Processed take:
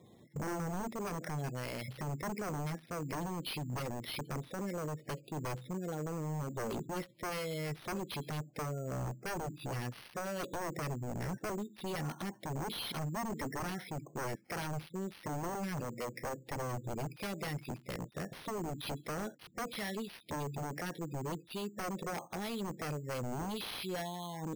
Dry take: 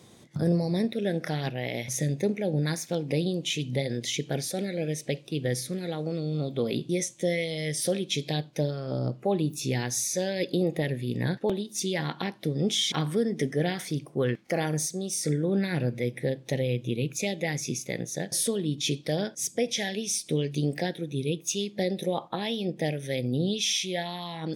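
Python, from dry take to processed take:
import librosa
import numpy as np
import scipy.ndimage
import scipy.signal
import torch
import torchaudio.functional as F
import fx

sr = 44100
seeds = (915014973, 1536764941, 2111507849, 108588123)

y = fx.highpass(x, sr, hz=fx.line((15.8, 210.0), (16.61, 96.0)), slope=12, at=(15.8, 16.61), fade=0.02)
y = fx.spec_gate(y, sr, threshold_db=-20, keep='strong')
y = 10.0 ** (-27.5 / 20.0) * (np.abs((y / 10.0 ** (-27.5 / 20.0) + 3.0) % 4.0 - 2.0) - 1.0)
y = np.repeat(scipy.signal.resample_poly(y, 1, 6), 6)[:len(y)]
y = y * 10.0 ** (-5.0 / 20.0)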